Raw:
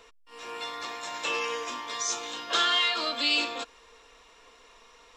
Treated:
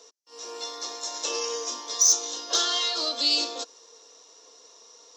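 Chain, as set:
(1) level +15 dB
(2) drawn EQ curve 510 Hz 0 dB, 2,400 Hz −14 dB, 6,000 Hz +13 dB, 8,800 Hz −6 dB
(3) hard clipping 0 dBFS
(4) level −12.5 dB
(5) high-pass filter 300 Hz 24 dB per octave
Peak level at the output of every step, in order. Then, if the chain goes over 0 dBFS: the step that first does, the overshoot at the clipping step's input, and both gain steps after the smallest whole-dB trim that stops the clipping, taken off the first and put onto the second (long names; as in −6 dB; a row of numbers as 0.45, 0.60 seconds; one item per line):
+3.0, +7.0, 0.0, −12.5, −11.0 dBFS
step 1, 7.0 dB
step 1 +8 dB, step 4 −5.5 dB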